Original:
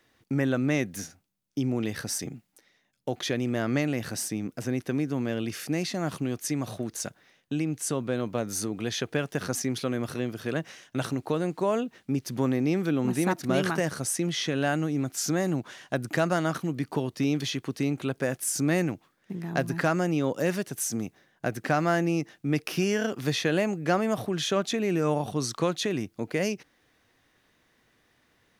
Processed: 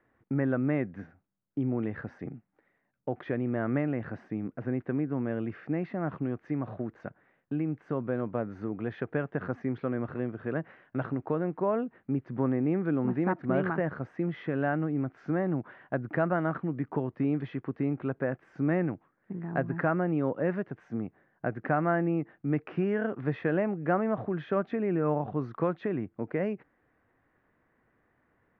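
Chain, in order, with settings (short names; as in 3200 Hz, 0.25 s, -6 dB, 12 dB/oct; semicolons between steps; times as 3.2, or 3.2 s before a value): LPF 1800 Hz 24 dB/oct; gain -2 dB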